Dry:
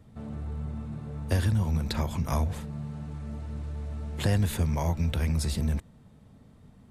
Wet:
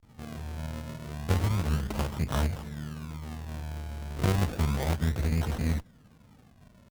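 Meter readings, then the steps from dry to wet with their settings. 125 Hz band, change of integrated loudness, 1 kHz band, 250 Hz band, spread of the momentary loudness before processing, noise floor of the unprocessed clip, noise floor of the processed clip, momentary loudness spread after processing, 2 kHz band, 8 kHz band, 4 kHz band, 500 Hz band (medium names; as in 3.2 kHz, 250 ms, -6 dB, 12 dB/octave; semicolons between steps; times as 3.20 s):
-1.5 dB, -1.0 dB, +1.0 dB, -1.0 dB, 11 LU, -55 dBFS, -58 dBFS, 12 LU, +1.5 dB, -2.0 dB, -1.5 dB, +0.5 dB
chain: vibrato 0.38 Hz 98 cents; decimation with a swept rate 38×, swing 100% 0.32 Hz; Chebyshev shaper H 3 -22 dB, 6 -17 dB, 8 -17 dB, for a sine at -14.5 dBFS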